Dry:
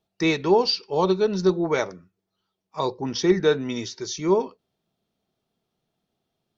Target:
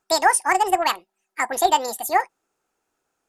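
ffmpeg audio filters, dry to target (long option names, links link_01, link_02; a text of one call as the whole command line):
ffmpeg -i in.wav -af "equalizer=frequency=98:width=0.43:gain=-6.5,asetrate=88200,aresample=44100,volume=4dB" out.wav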